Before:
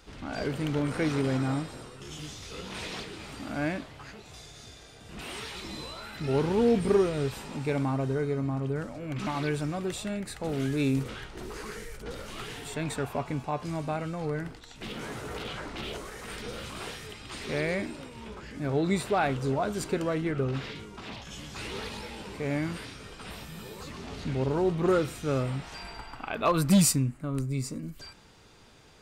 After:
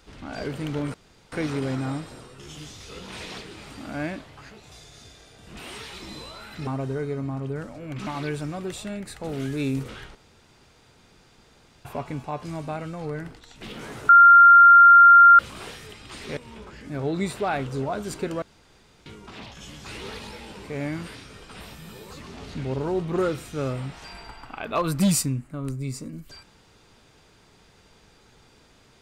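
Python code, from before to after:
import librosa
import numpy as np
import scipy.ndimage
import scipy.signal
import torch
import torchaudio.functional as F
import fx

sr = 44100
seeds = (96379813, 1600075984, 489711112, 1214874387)

y = fx.edit(x, sr, fx.insert_room_tone(at_s=0.94, length_s=0.38),
    fx.cut(start_s=6.29, length_s=1.58),
    fx.room_tone_fill(start_s=11.35, length_s=1.7),
    fx.bleep(start_s=15.29, length_s=1.3, hz=1390.0, db=-7.5),
    fx.cut(start_s=17.57, length_s=0.5),
    fx.room_tone_fill(start_s=20.12, length_s=0.64), tone=tone)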